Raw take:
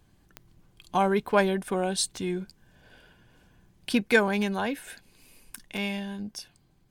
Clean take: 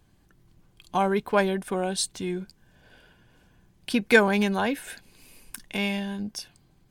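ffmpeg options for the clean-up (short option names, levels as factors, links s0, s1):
-af "adeclick=t=4,asetnsamples=n=441:p=0,asendcmd='4.02 volume volume 3.5dB',volume=1"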